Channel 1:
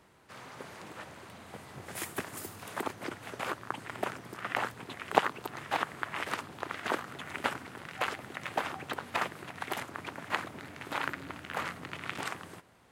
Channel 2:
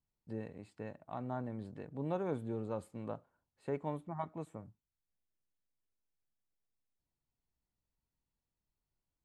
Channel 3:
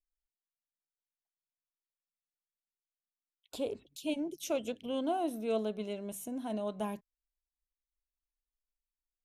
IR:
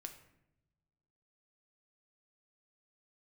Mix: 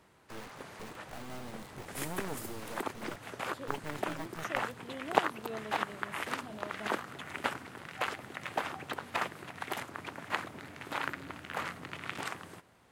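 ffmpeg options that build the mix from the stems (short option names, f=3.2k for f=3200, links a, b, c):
-filter_complex "[0:a]volume=-1.5dB[a];[1:a]bandreject=f=540:w=12,acrusher=bits=5:dc=4:mix=0:aa=0.000001,volume=1dB[b];[2:a]volume=-10dB[c];[a][b][c]amix=inputs=3:normalize=0"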